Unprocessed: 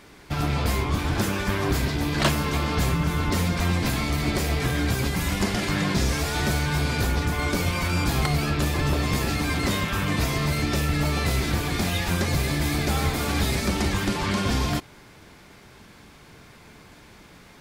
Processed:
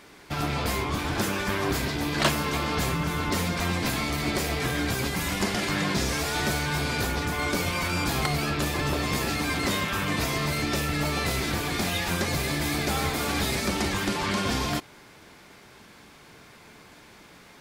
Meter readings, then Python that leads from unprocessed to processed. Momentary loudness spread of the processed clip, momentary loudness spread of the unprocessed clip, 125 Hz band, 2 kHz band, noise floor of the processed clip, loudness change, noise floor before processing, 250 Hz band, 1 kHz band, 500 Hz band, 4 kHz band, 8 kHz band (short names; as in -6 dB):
2 LU, 2 LU, -6.0 dB, 0.0 dB, -51 dBFS, -2.0 dB, -50 dBFS, -3.0 dB, 0.0 dB, -1.0 dB, 0.0 dB, 0.0 dB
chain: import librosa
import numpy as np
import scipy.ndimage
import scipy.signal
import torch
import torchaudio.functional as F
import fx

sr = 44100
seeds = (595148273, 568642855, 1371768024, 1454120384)

y = fx.low_shelf(x, sr, hz=150.0, db=-9.5)